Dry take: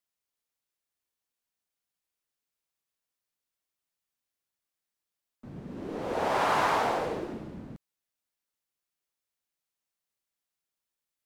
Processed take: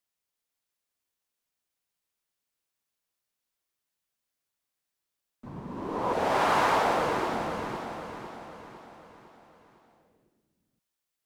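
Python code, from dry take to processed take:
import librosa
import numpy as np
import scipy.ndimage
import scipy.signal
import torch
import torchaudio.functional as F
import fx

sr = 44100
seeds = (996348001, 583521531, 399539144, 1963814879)

y = fx.peak_eq(x, sr, hz=1000.0, db=14.5, octaves=0.51, at=(5.46, 6.13))
y = fx.echo_feedback(y, sr, ms=505, feedback_pct=49, wet_db=-7)
y = y * 10.0 ** (1.5 / 20.0)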